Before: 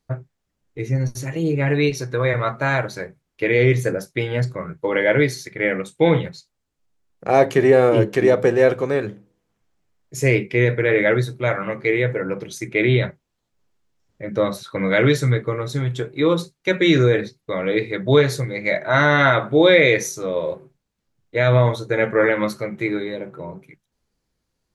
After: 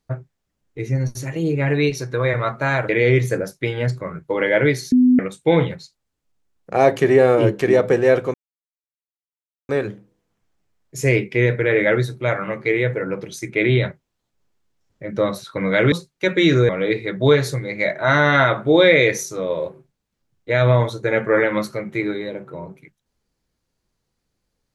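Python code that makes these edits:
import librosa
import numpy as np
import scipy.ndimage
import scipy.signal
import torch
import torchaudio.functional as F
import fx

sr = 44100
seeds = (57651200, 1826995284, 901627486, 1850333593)

y = fx.edit(x, sr, fx.cut(start_s=2.89, length_s=0.54),
    fx.bleep(start_s=5.46, length_s=0.27, hz=251.0, db=-9.5),
    fx.insert_silence(at_s=8.88, length_s=1.35),
    fx.cut(start_s=15.11, length_s=1.25),
    fx.cut(start_s=17.13, length_s=0.42), tone=tone)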